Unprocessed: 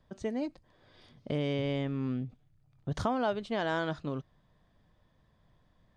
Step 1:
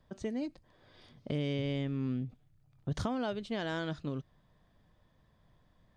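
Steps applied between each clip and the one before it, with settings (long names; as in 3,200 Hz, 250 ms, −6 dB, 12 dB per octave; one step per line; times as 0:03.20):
dynamic equaliser 900 Hz, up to −8 dB, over −45 dBFS, Q 0.71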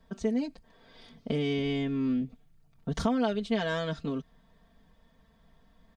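comb filter 4.4 ms, depth 98%
level +2.5 dB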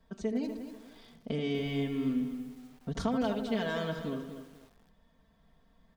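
tape delay 78 ms, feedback 53%, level −6 dB, low-pass 1,400 Hz
feedback echo at a low word length 243 ms, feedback 35%, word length 8 bits, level −10 dB
level −4 dB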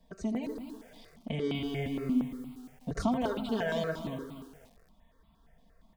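step-sequenced phaser 8.6 Hz 370–1,700 Hz
level +4 dB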